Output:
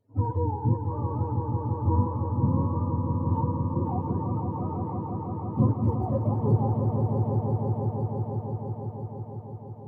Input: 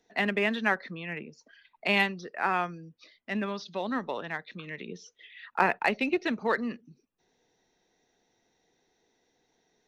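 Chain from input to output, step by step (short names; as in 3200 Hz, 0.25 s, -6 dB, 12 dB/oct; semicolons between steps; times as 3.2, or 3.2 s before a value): spectrum mirrored in octaves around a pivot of 440 Hz; swelling echo 0.167 s, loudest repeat 5, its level -7 dB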